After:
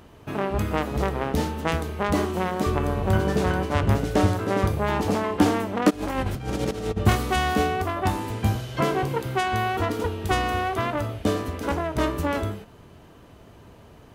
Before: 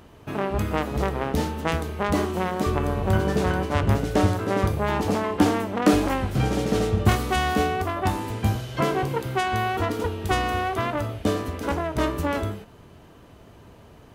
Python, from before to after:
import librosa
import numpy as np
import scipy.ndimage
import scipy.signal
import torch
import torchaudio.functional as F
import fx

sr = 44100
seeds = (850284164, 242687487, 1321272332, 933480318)

y = fx.over_compress(x, sr, threshold_db=-26.0, ratio=-0.5, at=(5.89, 6.96), fade=0.02)